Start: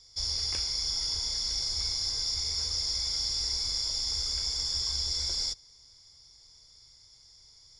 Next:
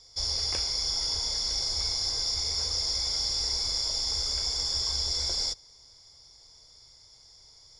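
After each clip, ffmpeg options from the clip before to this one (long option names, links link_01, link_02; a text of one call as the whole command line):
ffmpeg -i in.wav -af "equalizer=frequency=620:width_type=o:width=1.7:gain=7.5,volume=1.5dB" out.wav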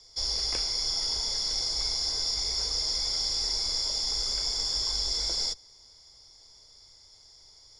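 ffmpeg -i in.wav -af "afreqshift=-22" out.wav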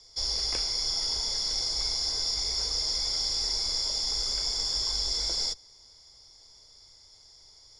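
ffmpeg -i in.wav -ar 48000 -c:a sbc -b:a 192k out.sbc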